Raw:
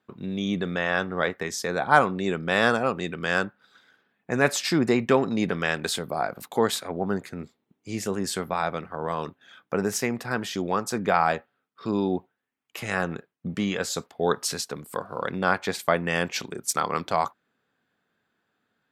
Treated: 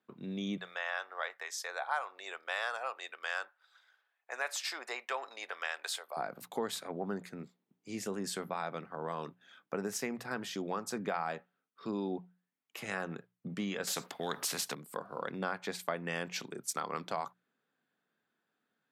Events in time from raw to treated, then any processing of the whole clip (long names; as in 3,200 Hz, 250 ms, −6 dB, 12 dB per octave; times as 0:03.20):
0:00.57–0:06.17: high-pass filter 650 Hz 24 dB per octave
0:13.87–0:14.75: every bin compressed towards the loudest bin 2 to 1
whole clip: high-pass filter 130 Hz 24 dB per octave; mains-hum notches 60/120/180 Hz; downward compressor 3 to 1, threshold −24 dBFS; level −8 dB